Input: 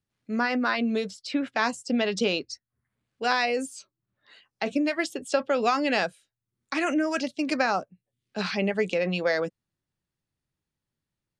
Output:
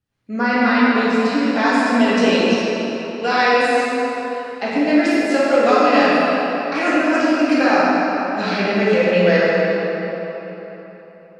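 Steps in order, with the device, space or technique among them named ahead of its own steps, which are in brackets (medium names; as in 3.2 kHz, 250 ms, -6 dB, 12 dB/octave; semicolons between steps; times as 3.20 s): swimming-pool hall (reverberation RT60 3.8 s, pre-delay 3 ms, DRR -9.5 dB; treble shelf 4.5 kHz -7 dB); trim +1.5 dB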